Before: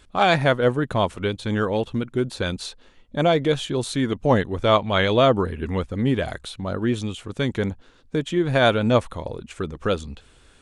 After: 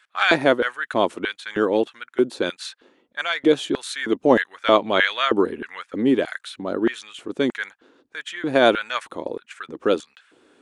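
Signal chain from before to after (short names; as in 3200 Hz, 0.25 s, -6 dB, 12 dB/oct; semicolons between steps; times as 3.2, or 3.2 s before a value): LFO high-pass square 1.6 Hz 310–1600 Hz; mismatched tape noise reduction decoder only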